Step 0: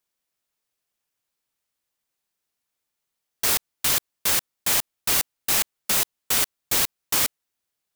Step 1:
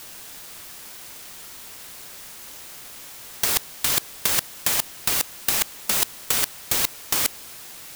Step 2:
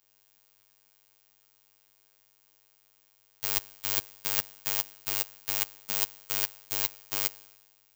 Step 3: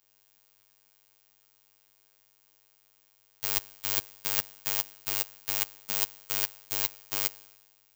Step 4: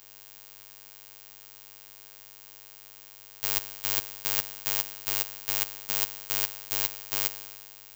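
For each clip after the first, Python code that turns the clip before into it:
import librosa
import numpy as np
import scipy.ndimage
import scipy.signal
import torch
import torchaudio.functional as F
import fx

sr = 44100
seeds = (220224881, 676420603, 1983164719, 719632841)

y1 = fx.over_compress(x, sr, threshold_db=-26.0, ratio=-0.5)
y1 = fx.quant_dither(y1, sr, seeds[0], bits=8, dither='triangular')
y1 = y1 * 10.0 ** (7.5 / 20.0)
y2 = fx.robotise(y1, sr, hz=100.0)
y2 = fx.band_widen(y2, sr, depth_pct=100)
y2 = y2 * 10.0 ** (-6.0 / 20.0)
y3 = y2
y4 = fx.bin_compress(y3, sr, power=0.6)
y4 = y4 * 10.0 ** (-1.5 / 20.0)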